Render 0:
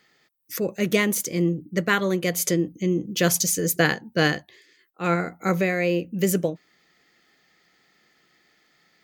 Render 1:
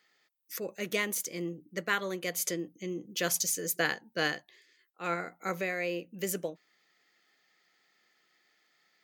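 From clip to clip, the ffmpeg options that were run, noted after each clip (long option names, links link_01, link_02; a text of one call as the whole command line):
ffmpeg -i in.wav -af "highpass=frequency=540:poles=1,volume=-7dB" out.wav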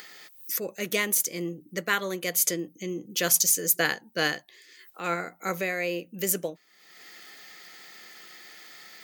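ffmpeg -i in.wav -af "acompressor=mode=upward:threshold=-38dB:ratio=2.5,crystalizer=i=1:c=0,volume=3.5dB" out.wav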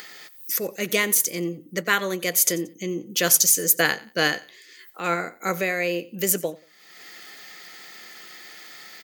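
ffmpeg -i in.wav -af "aecho=1:1:90|180:0.0944|0.0274,volume=4.5dB" out.wav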